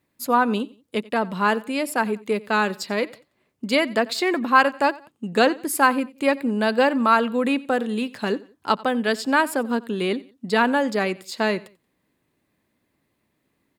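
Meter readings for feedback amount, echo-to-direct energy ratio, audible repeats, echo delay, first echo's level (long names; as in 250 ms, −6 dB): 32%, −21.0 dB, 2, 90 ms, −21.5 dB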